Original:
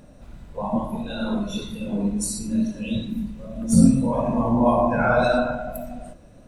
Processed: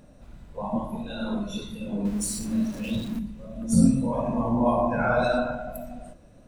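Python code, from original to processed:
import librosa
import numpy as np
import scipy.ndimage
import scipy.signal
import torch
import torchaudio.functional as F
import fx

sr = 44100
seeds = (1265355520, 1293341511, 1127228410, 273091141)

y = fx.zero_step(x, sr, step_db=-32.5, at=(2.05, 3.19))
y = y * librosa.db_to_amplitude(-4.0)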